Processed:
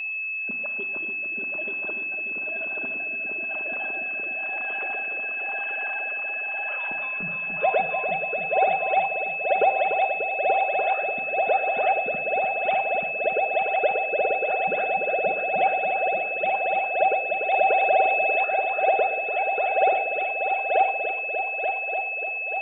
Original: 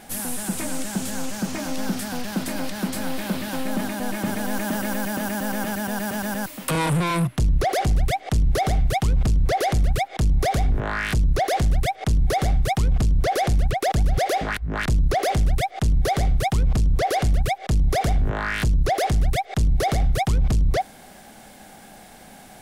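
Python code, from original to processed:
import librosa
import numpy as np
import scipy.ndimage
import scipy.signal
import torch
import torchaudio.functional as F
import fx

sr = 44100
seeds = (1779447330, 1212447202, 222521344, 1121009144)

y = fx.sine_speech(x, sr)
y = fx.peak_eq(y, sr, hz=1900.0, db=-10.0, octaves=0.31)
y = fx.level_steps(y, sr, step_db=20)
y = fx.echo_heads(y, sr, ms=294, heads='all three', feedback_pct=63, wet_db=-6.5)
y = fx.rotary(y, sr, hz=1.0)
y = y + 10.0 ** (-31.0 / 20.0) * np.sin(2.0 * np.pi * 2600.0 * np.arange(len(y)) / sr)
y = fx.room_shoebox(y, sr, seeds[0], volume_m3=3000.0, walls='furnished', distance_m=1.3)
y = fx.env_flatten(y, sr, amount_pct=50, at=(17.54, 18.45))
y = y * librosa.db_to_amplitude(2.5)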